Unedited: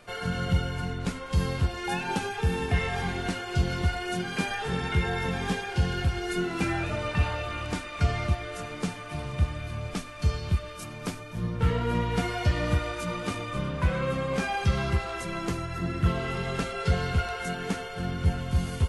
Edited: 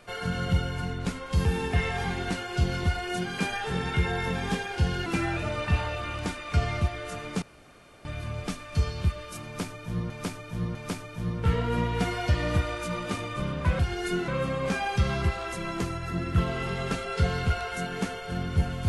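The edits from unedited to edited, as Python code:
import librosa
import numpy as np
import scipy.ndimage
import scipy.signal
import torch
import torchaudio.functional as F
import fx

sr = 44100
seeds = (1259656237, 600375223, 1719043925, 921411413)

y = fx.edit(x, sr, fx.cut(start_s=1.45, length_s=0.98),
    fx.move(start_s=6.04, length_s=0.49, to_s=13.96),
    fx.room_tone_fill(start_s=8.89, length_s=0.63),
    fx.repeat(start_s=10.92, length_s=0.65, count=3), tone=tone)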